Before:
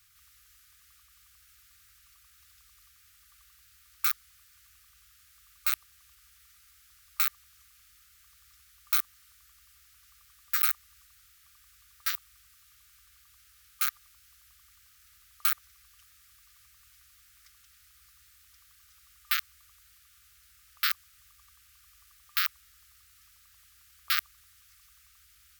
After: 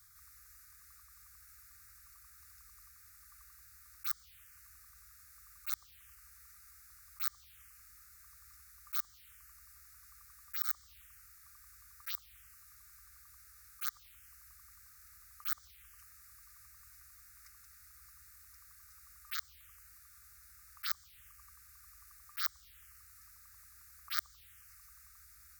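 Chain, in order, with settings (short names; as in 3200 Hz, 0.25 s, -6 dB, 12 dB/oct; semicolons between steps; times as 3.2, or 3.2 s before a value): auto swell 0.133 s; envelope phaser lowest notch 450 Hz, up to 2700 Hz, full sweep at -37 dBFS; gain +2.5 dB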